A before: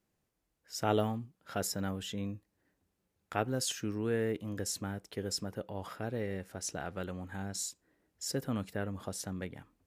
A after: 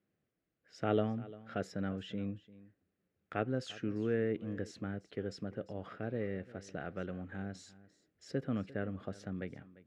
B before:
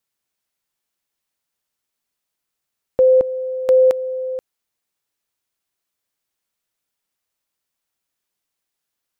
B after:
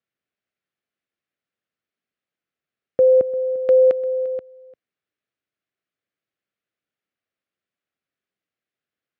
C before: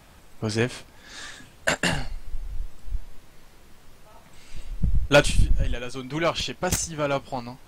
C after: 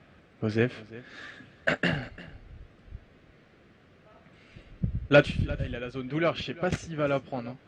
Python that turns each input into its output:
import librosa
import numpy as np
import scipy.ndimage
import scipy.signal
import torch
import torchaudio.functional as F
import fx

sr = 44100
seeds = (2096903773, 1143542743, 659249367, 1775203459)

p1 = fx.bandpass_edges(x, sr, low_hz=100.0, high_hz=2300.0)
p2 = fx.peak_eq(p1, sr, hz=930.0, db=-13.5, octaves=0.45)
y = p2 + fx.echo_single(p2, sr, ms=347, db=-19.0, dry=0)